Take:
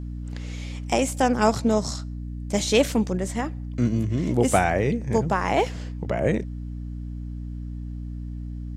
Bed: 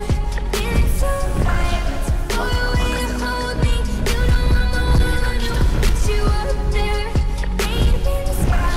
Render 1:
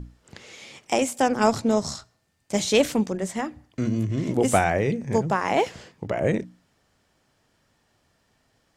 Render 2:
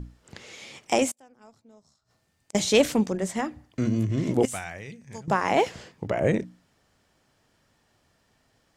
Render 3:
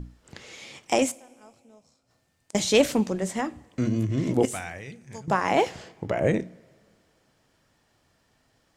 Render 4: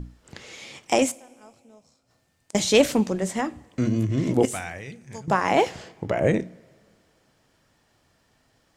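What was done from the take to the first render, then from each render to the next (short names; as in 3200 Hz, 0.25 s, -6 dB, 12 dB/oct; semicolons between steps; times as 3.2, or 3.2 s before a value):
notches 60/120/180/240/300 Hz
1.11–2.55 flipped gate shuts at -25 dBFS, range -33 dB; 4.45–5.28 passive tone stack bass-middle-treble 5-5-5
two-slope reverb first 0.33 s, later 2.1 s, from -18 dB, DRR 15.5 dB
gain +2 dB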